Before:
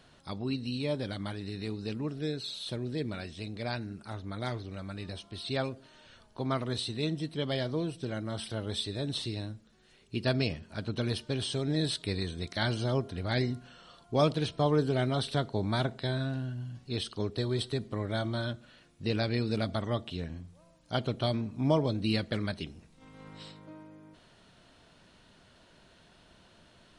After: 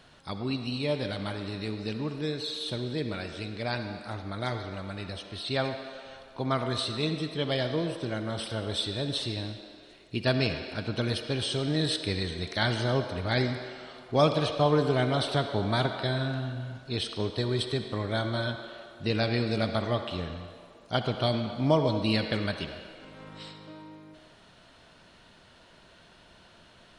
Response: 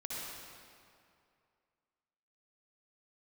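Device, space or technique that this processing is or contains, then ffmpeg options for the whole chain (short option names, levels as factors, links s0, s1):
filtered reverb send: -filter_complex "[0:a]asplit=2[s0][s1];[s1]highpass=420,lowpass=5900[s2];[1:a]atrim=start_sample=2205[s3];[s2][s3]afir=irnorm=-1:irlink=0,volume=0.596[s4];[s0][s4]amix=inputs=2:normalize=0,volume=1.26"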